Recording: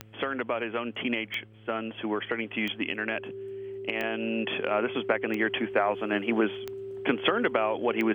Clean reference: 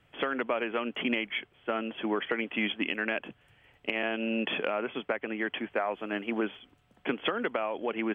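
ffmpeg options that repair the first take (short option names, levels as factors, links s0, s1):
-af "adeclick=t=4,bandreject=f=108.4:t=h:w=4,bandreject=f=216.8:t=h:w=4,bandreject=f=325.2:t=h:w=4,bandreject=f=433.6:t=h:w=4,bandreject=f=542:t=h:w=4,bandreject=f=390:w=30,asetnsamples=n=441:p=0,asendcmd='4.71 volume volume -5dB',volume=1"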